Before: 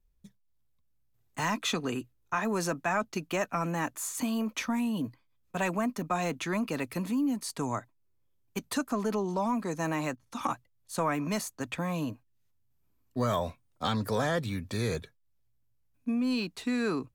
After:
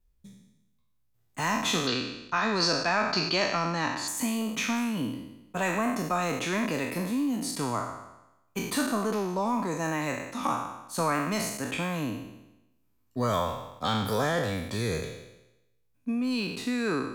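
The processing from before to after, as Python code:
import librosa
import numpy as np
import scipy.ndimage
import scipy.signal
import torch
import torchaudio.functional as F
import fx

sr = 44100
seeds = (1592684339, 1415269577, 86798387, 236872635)

y = fx.spec_trails(x, sr, decay_s=0.94)
y = fx.lowpass_res(y, sr, hz=4500.0, q=10.0, at=(1.87, 4.08))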